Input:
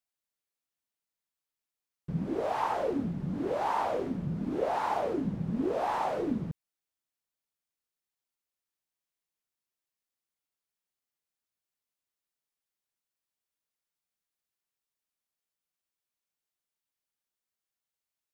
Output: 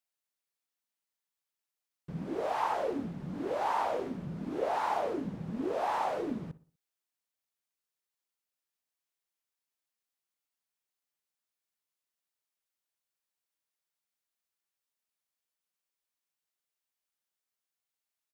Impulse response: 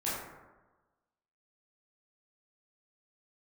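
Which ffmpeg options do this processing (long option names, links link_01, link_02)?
-filter_complex "[0:a]lowshelf=frequency=290:gain=-8.5,asplit=2[link_01][link_02];[link_02]adelay=61,lowpass=frequency=1900:poles=1,volume=-16.5dB,asplit=2[link_03][link_04];[link_04]adelay=61,lowpass=frequency=1900:poles=1,volume=0.42,asplit=2[link_05][link_06];[link_06]adelay=61,lowpass=frequency=1900:poles=1,volume=0.42,asplit=2[link_07][link_08];[link_08]adelay=61,lowpass=frequency=1900:poles=1,volume=0.42[link_09];[link_03][link_05][link_07][link_09]amix=inputs=4:normalize=0[link_10];[link_01][link_10]amix=inputs=2:normalize=0"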